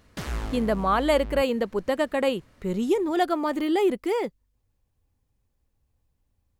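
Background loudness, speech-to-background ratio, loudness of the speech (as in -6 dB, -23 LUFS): -36.5 LUFS, 11.0 dB, -25.5 LUFS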